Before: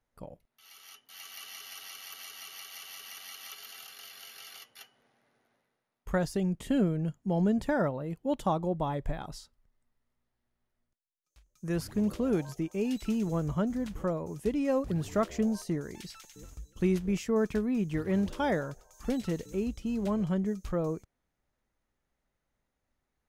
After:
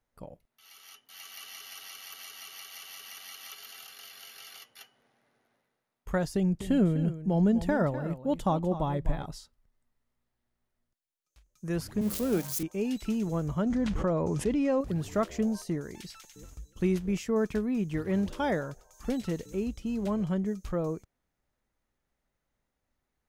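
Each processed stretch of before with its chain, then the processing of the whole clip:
0:06.34–0:09.31: low-shelf EQ 180 Hz +6.5 dB + single-tap delay 250 ms −12.5 dB
0:12.01–0:12.63: spike at every zero crossing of −25.5 dBFS + mains-hum notches 50/100/150/200 Hz + multiband upward and downward expander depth 70%
0:13.66–0:14.81: Bessel low-pass filter 5,100 Hz + envelope flattener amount 70%
whole clip: no processing

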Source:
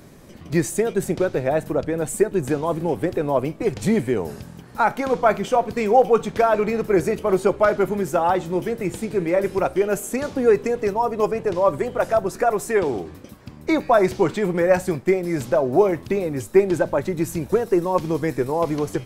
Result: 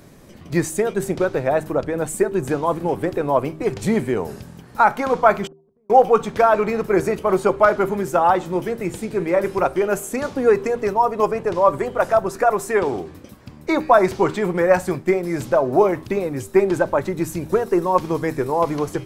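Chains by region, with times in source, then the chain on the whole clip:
0:05.47–0:05.90: low-pass filter 1,100 Hz 24 dB per octave + gate with flip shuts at −19 dBFS, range −40 dB + downward compressor 4 to 1, threshold −53 dBFS
whole clip: hum removal 78.28 Hz, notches 5; dynamic equaliser 1,100 Hz, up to +6 dB, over −34 dBFS, Q 1.2

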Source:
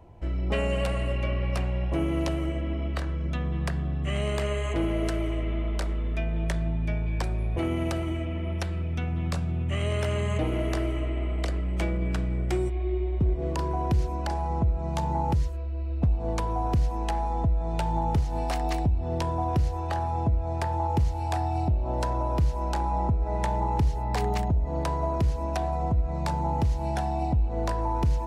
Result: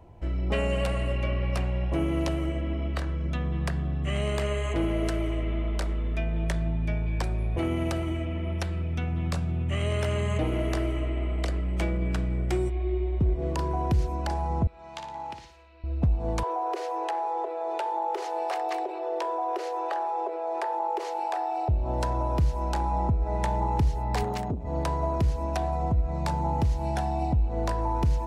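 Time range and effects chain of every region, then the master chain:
0:14.67–0:15.84: resonant band-pass 2,800 Hz, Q 0.86 + flutter between parallel walls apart 9.9 metres, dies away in 0.45 s
0:16.43–0:21.69: Butterworth high-pass 350 Hz 96 dB per octave + high-shelf EQ 3,500 Hz −11 dB + envelope flattener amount 70%
0:24.23–0:24.65: high-pass filter 77 Hz 24 dB per octave + saturating transformer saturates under 270 Hz
whole clip: no processing

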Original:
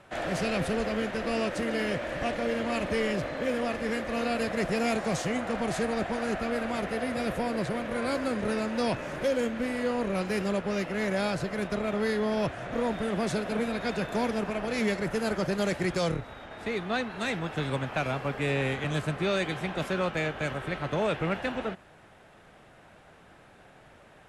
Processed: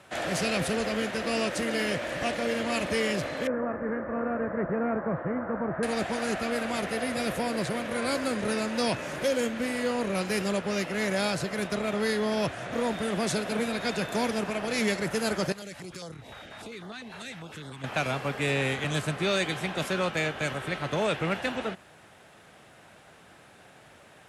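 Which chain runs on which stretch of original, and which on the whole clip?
0:03.47–0:05.83: Butterworth low-pass 1,600 Hz + notch filter 750 Hz, Q 9
0:15.52–0:17.84: downward compressor 5 to 1, threshold −38 dBFS + notch on a step sequencer 10 Hz 290–2,500 Hz
whole clip: high-pass filter 73 Hz; high-shelf EQ 3,200 Hz +9 dB

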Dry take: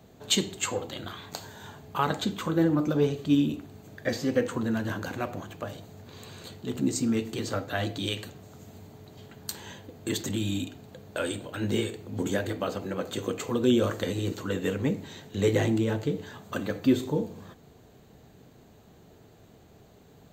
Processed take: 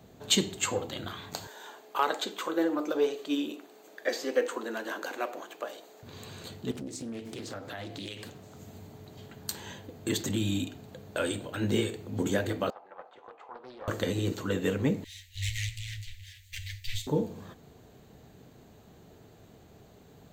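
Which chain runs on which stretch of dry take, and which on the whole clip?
0:01.47–0:06.03: high-pass filter 350 Hz 24 dB per octave + hard clipping −14 dBFS
0:06.71–0:08.57: high-pass filter 110 Hz 6 dB per octave + downward compressor 4 to 1, threshold −37 dBFS + highs frequency-modulated by the lows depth 0.38 ms
0:12.70–0:13.88: four-pole ladder band-pass 910 Hz, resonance 65% + highs frequency-modulated by the lows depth 0.4 ms
0:15.04–0:17.07: lower of the sound and its delayed copy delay 9.5 ms + Chebyshev band-stop filter 100–1,900 Hz, order 5 + dynamic equaliser 5,200 Hz, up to +5 dB, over −53 dBFS, Q 0.85
whole clip: no processing

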